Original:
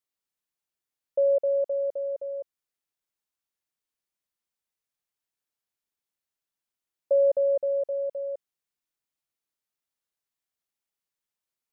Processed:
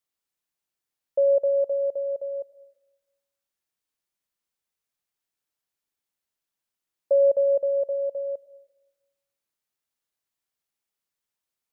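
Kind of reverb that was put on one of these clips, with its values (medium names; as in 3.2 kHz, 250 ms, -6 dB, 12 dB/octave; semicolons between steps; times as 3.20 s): algorithmic reverb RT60 1.1 s, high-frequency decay 0.95×, pre-delay 60 ms, DRR 19 dB; trim +2 dB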